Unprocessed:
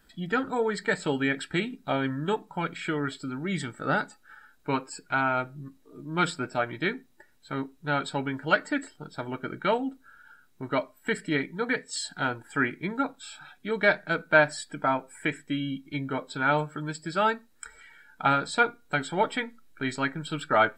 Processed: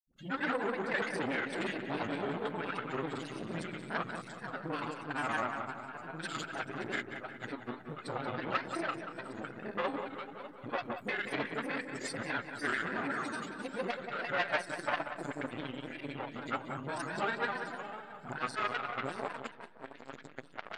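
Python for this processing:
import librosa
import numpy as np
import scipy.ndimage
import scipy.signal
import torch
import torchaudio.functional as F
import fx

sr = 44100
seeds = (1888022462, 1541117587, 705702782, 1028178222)

p1 = fx.reverse_delay_fb(x, sr, ms=299, feedback_pct=48, wet_db=-7.0)
p2 = fx.low_shelf(p1, sr, hz=85.0, db=-7.0)
p3 = fx.dispersion(p2, sr, late='highs', ms=73.0, hz=410.0)
p4 = fx.granulator(p3, sr, seeds[0], grain_ms=100.0, per_s=20.0, spray_ms=100.0, spread_st=0)
p5 = fx.fold_sine(p4, sr, drive_db=6, ceiling_db=-10.0)
p6 = p4 + (p5 * 10.0 ** (-11.5 / 20.0))
p7 = fx.granulator(p6, sr, seeds[1], grain_ms=100.0, per_s=20.0, spray_ms=21.0, spread_st=3)
p8 = p7 + fx.echo_filtered(p7, sr, ms=184, feedback_pct=55, hz=3200.0, wet_db=-7.5, dry=0)
p9 = fx.transformer_sat(p8, sr, knee_hz=1400.0)
y = p9 * 10.0 ** (-8.0 / 20.0)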